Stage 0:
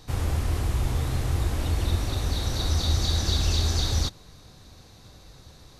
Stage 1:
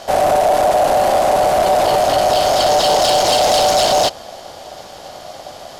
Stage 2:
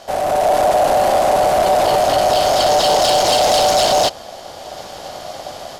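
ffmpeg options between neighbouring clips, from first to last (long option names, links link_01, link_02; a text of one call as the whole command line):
ffmpeg -i in.wav -af "aeval=exprs='0.282*sin(PI/2*3.16*val(0)/0.282)':channel_layout=same,aeval=exprs='val(0)*sin(2*PI*670*n/s)':channel_layout=same,volume=4dB" out.wav
ffmpeg -i in.wav -af "dynaudnorm=framelen=240:gausssize=3:maxgain=8.5dB,volume=-5.5dB" out.wav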